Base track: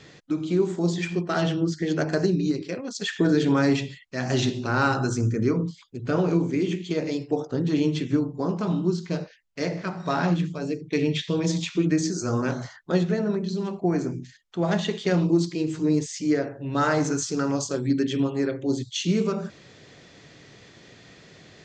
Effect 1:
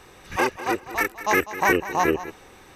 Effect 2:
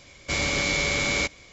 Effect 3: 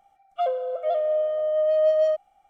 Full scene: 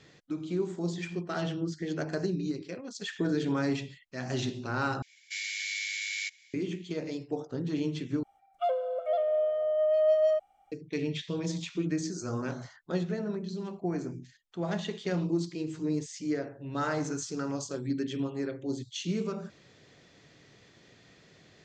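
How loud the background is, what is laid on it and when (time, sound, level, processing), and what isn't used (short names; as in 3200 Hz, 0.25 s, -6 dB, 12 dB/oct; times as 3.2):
base track -8.5 dB
5.02 replace with 2 -8.5 dB + steep high-pass 1700 Hz 72 dB/oct
8.23 replace with 3 -4 dB
not used: 1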